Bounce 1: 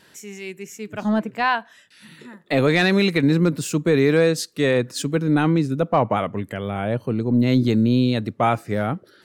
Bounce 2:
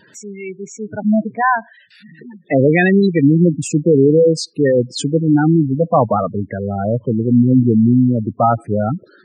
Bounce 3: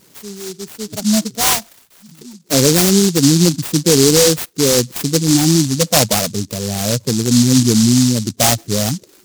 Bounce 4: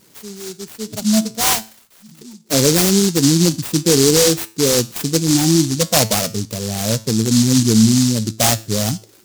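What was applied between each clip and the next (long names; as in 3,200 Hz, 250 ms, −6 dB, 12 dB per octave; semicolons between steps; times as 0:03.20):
gate on every frequency bin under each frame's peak −10 dB strong; level +6.5 dB
short delay modulated by noise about 5,600 Hz, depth 0.24 ms
tuned comb filter 110 Hz, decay 0.4 s, harmonics all, mix 50%; level +3 dB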